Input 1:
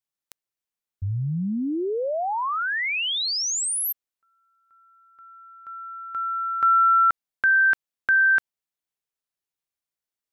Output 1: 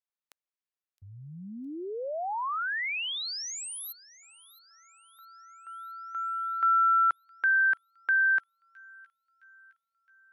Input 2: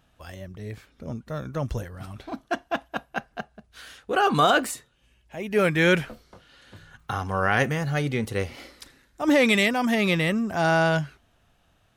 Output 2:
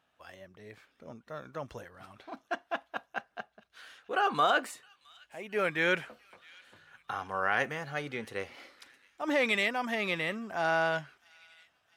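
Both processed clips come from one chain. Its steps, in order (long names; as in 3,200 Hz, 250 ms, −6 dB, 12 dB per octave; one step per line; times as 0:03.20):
high-pass filter 870 Hz 6 dB per octave
high-shelf EQ 3,900 Hz −12 dB
delay with a high-pass on its return 664 ms, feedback 54%, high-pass 2,800 Hz, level −19 dB
level −2.5 dB
AAC 160 kbit/s 48,000 Hz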